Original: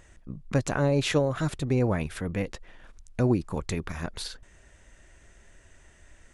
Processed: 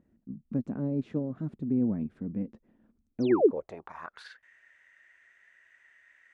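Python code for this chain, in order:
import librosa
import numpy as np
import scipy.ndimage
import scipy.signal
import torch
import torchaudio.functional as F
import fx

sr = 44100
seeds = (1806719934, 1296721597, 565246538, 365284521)

y = fx.spec_paint(x, sr, seeds[0], shape='fall', start_s=3.2, length_s=0.31, low_hz=220.0, high_hz=6600.0, level_db=-19.0)
y = fx.filter_sweep_bandpass(y, sr, from_hz=230.0, to_hz=1900.0, start_s=3.08, end_s=4.35, q=4.5)
y = y * 10.0 ** (5.0 / 20.0)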